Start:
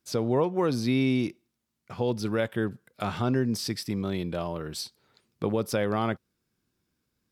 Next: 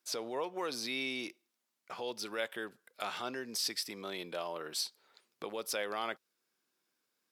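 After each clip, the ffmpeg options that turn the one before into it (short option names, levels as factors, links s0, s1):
-filter_complex "[0:a]acrossover=split=2000[s0][s1];[s0]alimiter=level_in=1.06:limit=0.0631:level=0:latency=1:release=349,volume=0.944[s2];[s2][s1]amix=inputs=2:normalize=0,highpass=500"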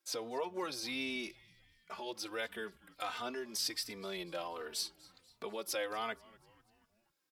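-filter_complex "[0:a]asplit=5[s0][s1][s2][s3][s4];[s1]adelay=243,afreqshift=-140,volume=0.0708[s5];[s2]adelay=486,afreqshift=-280,volume=0.038[s6];[s3]adelay=729,afreqshift=-420,volume=0.0207[s7];[s4]adelay=972,afreqshift=-560,volume=0.0111[s8];[s0][s5][s6][s7][s8]amix=inputs=5:normalize=0,asplit=2[s9][s10];[s10]adelay=3.2,afreqshift=-1.4[s11];[s9][s11]amix=inputs=2:normalize=1,volume=1.19"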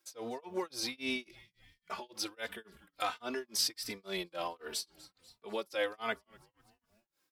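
-af "tremolo=f=3.6:d=0.99,volume=2"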